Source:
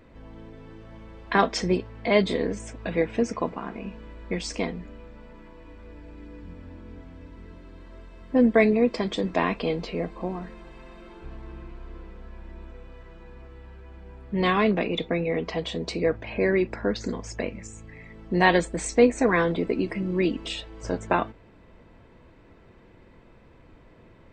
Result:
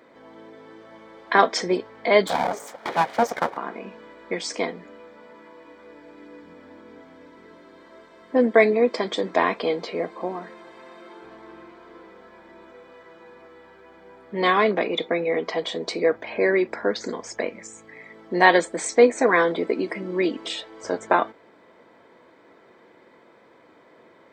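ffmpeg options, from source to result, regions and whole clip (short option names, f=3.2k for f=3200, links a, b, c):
-filter_complex "[0:a]asettb=1/sr,asplit=3[a][b][c];[a]atrim=end=2.274[d];[b]atrim=start=2.27:end=3.57,asetpts=PTS-STARTPTS,afade=t=in:d=0.004:c=qsin,afade=t=out:st=1.296:d=0.004:c=qsin,highpass=f=220:w=0.5412,highpass=f=220:w=1.3066,lowshelf=f=420:g=10.5,aeval=exprs='abs(val(0))':c=same[e];[c]atrim=start=3.566[f];[d][e]acrossfade=d=0.004:c1=hsin:c2=qsin[g];[g][f]acrossfade=d=0.004:c1=qsin:c2=hsin,highpass=180,bass=f=250:g=-13,treble=f=4k:g=-2,bandreject=f=2.7k:w=5.3,volume=5dB"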